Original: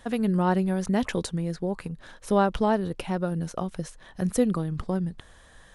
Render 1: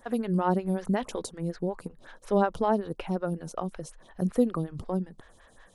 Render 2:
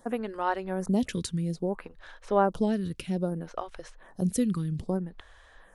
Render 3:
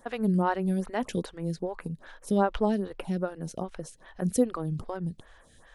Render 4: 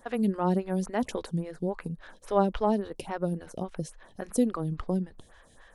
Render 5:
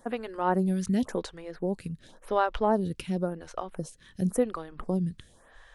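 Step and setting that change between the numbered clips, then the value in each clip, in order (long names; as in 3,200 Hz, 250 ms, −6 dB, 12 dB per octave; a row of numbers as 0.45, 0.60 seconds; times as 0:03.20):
phaser with staggered stages, speed: 5.4, 0.61, 2.5, 3.6, 0.93 Hertz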